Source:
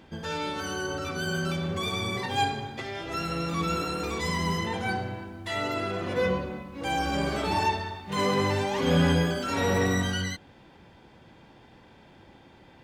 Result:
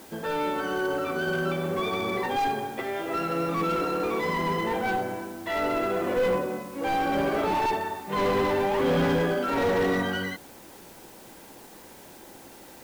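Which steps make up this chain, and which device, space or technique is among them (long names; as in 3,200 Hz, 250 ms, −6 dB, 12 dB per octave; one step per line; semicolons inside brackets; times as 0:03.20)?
aircraft radio (band-pass filter 370–2,400 Hz; hard clipping −28.5 dBFS, distortion −10 dB; white noise bed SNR 20 dB)
low-shelf EQ 490 Hz +10 dB
level +3 dB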